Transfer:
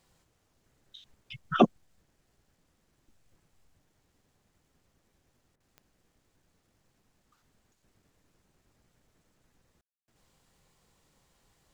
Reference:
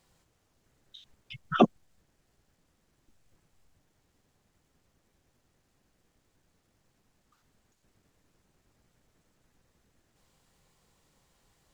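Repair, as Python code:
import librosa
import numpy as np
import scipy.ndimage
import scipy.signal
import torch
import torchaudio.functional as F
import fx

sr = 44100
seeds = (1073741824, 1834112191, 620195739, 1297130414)

y = fx.fix_declick_ar(x, sr, threshold=10.0)
y = fx.fix_ambience(y, sr, seeds[0], print_start_s=5.22, print_end_s=5.72, start_s=9.81, end_s=10.08)
y = fx.fix_interpolate(y, sr, at_s=(5.56,), length_ms=41.0)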